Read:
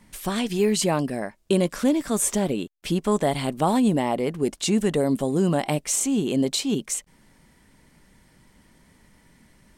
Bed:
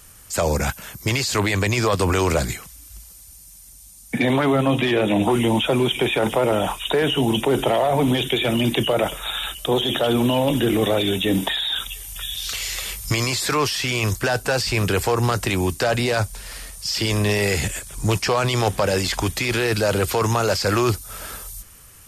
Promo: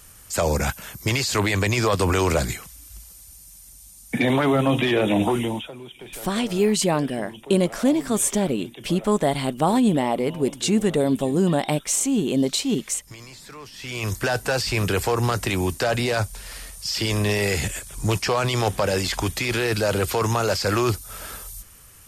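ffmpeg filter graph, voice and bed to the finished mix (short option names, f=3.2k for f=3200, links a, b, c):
-filter_complex "[0:a]adelay=6000,volume=1.5dB[a];[1:a]volume=17.5dB,afade=t=out:st=5.2:d=0.52:silence=0.105925,afade=t=in:st=13.72:d=0.51:silence=0.11885[b];[a][b]amix=inputs=2:normalize=0"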